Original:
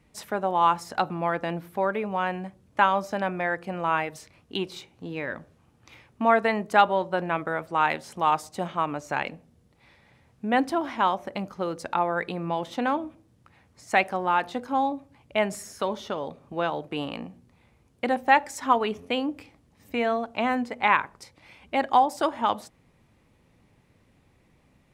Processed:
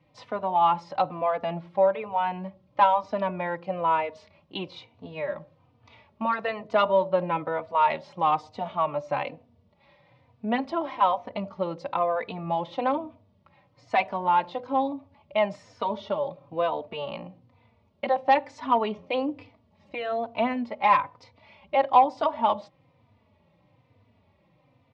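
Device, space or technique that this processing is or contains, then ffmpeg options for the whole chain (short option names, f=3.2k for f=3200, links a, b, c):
barber-pole flanger into a guitar amplifier: -filter_complex "[0:a]asplit=2[a][b];[b]adelay=3.3,afreqshift=-1.1[c];[a][c]amix=inputs=2:normalize=1,asoftclip=type=tanh:threshold=-13dB,highpass=95,equalizer=f=97:t=q:w=4:g=8,equalizer=f=370:t=q:w=4:g=-5,equalizer=f=590:t=q:w=4:g=8,equalizer=f=980:t=q:w=4:g=6,equalizer=f=1.6k:t=q:w=4:g=-8,lowpass=f=4.4k:w=0.5412,lowpass=f=4.4k:w=1.3066,volume=1dB"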